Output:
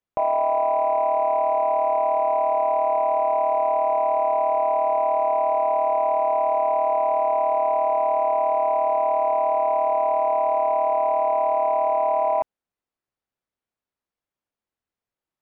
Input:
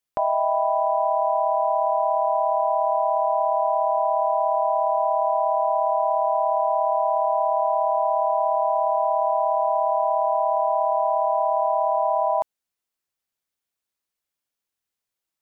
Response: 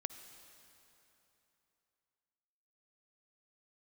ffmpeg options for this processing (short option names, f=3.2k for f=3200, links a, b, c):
-af "asoftclip=type=tanh:threshold=-15.5dB,lowpass=f=1k:p=1,volume=4dB"